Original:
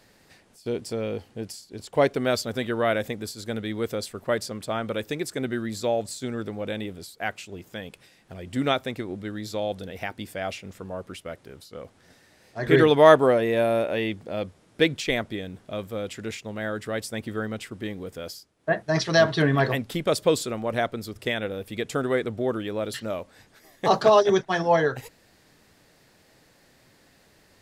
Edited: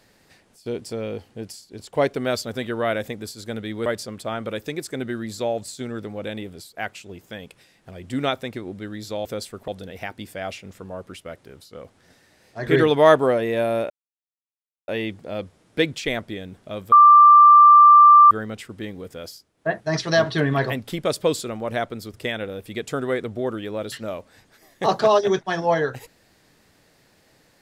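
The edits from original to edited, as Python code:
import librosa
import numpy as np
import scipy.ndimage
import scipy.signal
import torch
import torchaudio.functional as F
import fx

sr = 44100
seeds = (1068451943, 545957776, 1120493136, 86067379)

y = fx.edit(x, sr, fx.move(start_s=3.86, length_s=0.43, to_s=9.68),
    fx.insert_silence(at_s=13.9, length_s=0.98),
    fx.bleep(start_s=15.94, length_s=1.39, hz=1180.0, db=-6.5), tone=tone)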